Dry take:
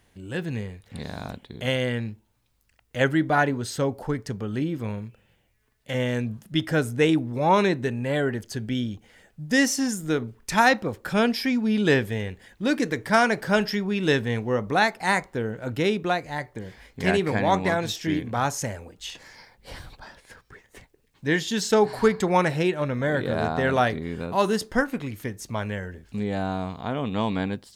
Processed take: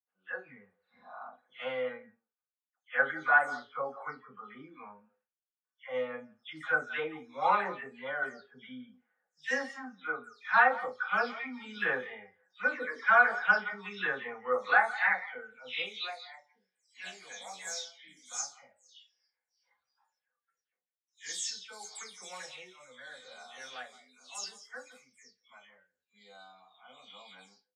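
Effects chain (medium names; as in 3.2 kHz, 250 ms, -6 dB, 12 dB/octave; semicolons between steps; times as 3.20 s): delay that grows with frequency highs early, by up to 248 ms; Bessel high-pass 150 Hz; speakerphone echo 170 ms, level -14 dB; gate with hold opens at -47 dBFS; level-controlled noise filter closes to 1.5 kHz, open at -18 dBFS; spectral noise reduction 17 dB; reverberation RT60 0.20 s, pre-delay 3 ms, DRR -2.5 dB; band-pass sweep 1.3 kHz -> 6.9 kHz, 14.80–16.74 s; trim -2 dB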